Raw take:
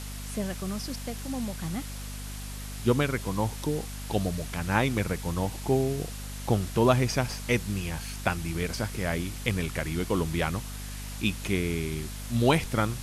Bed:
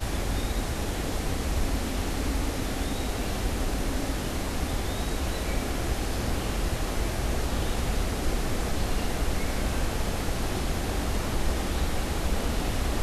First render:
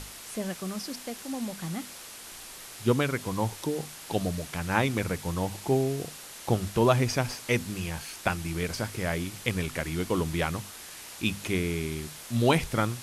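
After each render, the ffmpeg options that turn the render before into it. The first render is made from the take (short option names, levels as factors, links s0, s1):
-af "bandreject=f=50:t=h:w=6,bandreject=f=100:t=h:w=6,bandreject=f=150:t=h:w=6,bandreject=f=200:t=h:w=6,bandreject=f=250:t=h:w=6"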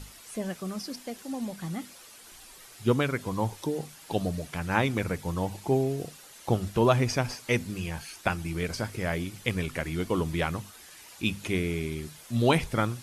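-af "afftdn=nr=9:nf=-45"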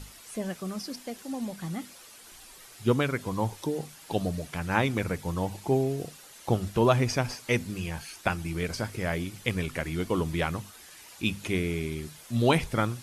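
-af anull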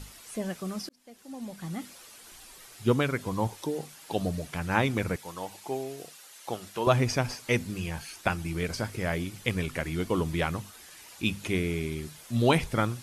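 -filter_complex "[0:a]asettb=1/sr,asplit=3[s0][s1][s2];[s0]atrim=end=3.474[s3];[s1]atrim=start=3.47:end=4.19,asetpts=PTS-STARTPTS,afade=t=in:d=0.004:c=qsin,afade=t=out:st=0.716:d=0.004:c=qsin,lowshelf=f=140:g=-8.5[s4];[s2]atrim=start=4.186[s5];[s3][s4]acrossfade=d=0.004:c1=hsin:c2=qsin[s6];[s6][s5]acrossfade=d=0.004:c1=qsin:c2=hsin,asettb=1/sr,asplit=3[s7][s8][s9];[s7]atrim=end=5.164[s10];[s8]atrim=start=5.16:end=6.87,asetpts=PTS-STARTPTS,afade=t=in:d=0.004:c=qsin,afade=t=out:st=1.706:d=0.004:c=qsin,highpass=f=880:p=1[s11];[s9]atrim=start=6.866[s12];[s10][s11]acrossfade=d=0.004:c1=hsin:c2=qsin[s13];[s13][s12]acrossfade=d=0.004:c1=qsin:c2=hsin,asplit=2[s14][s15];[s14]atrim=end=0.89,asetpts=PTS-STARTPTS,afade=t=out:st=0.886:d=0.004:c=hsin[s16];[s15]atrim=start=0.89,asetpts=PTS-STARTPTS,afade=t=in:d=0.98[s17];[s16][s17]concat=n=2:v=0:a=1"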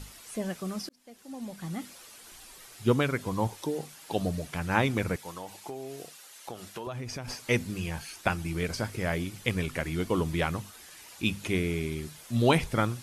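-filter_complex "[0:a]asettb=1/sr,asplit=3[s0][s1][s2];[s0]atrim=end=5.294[s3];[s1]atrim=start=5.29:end=7.28,asetpts=PTS-STARTPTS,afade=t=in:d=0.004:c=qsin,afade=t=out:st=1.986:d=0.004:c=qsin,acompressor=threshold=0.02:ratio=6:attack=3.2:release=140:knee=1:detection=peak[s4];[s2]atrim=start=7.276[s5];[s3][s4]acrossfade=d=0.004:c1=hsin:c2=qsin[s6];[s6][s5]acrossfade=d=0.004:c1=qsin:c2=hsin"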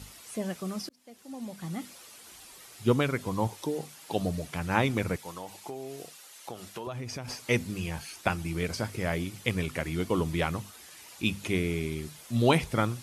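-af "highpass=55,equalizer=f=1600:w=5.2:g=-2.5"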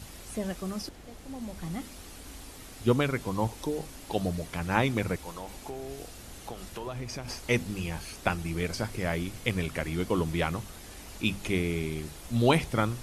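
-filter_complex "[1:a]volume=0.112[s0];[0:a][s0]amix=inputs=2:normalize=0"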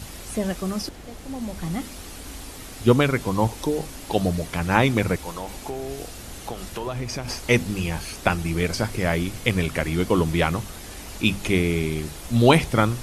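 -af "volume=2.37,alimiter=limit=0.794:level=0:latency=1"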